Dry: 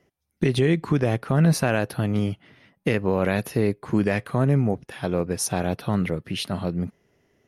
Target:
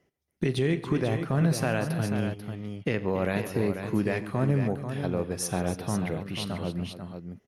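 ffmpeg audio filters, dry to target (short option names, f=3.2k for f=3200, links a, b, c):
-filter_complex "[0:a]asettb=1/sr,asplit=3[a][b][c];[a]atrim=end=2.274[d];[b]atrim=start=2.27:end=3,asetpts=PTS-STARTPTS,afade=t=in:d=0.004:c=qsin,afade=t=out:st=0.726:d=0.004:c=qsin,lowpass=7.9k[e];[c]atrim=start=2.996[f];[d][e]acrossfade=d=0.004:c1=hsin:c2=qsin[g];[g][f]acrossfade=d=0.004:c1=qsin:c2=hsin,aecho=1:1:44|88|138|280|491:0.133|0.1|0.1|0.224|0.398,volume=-5.5dB"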